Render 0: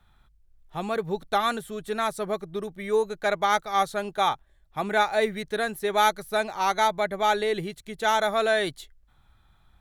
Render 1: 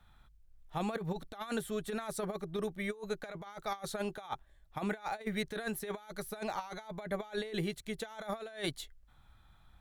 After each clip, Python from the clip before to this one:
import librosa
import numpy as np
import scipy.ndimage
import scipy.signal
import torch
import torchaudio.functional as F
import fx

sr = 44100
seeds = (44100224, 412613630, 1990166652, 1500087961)

y = fx.notch(x, sr, hz=380.0, q=12.0)
y = fx.over_compress(y, sr, threshold_db=-30.0, ratio=-0.5)
y = y * librosa.db_to_amplitude(-7.0)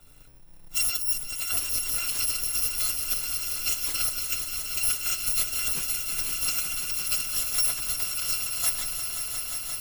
y = fx.bit_reversed(x, sr, seeds[0], block=256)
y = y + 0.42 * np.pad(y, (int(6.9 * sr / 1000.0), 0))[:len(y)]
y = fx.echo_swell(y, sr, ms=176, loudest=5, wet_db=-10.5)
y = y * librosa.db_to_amplitude(8.0)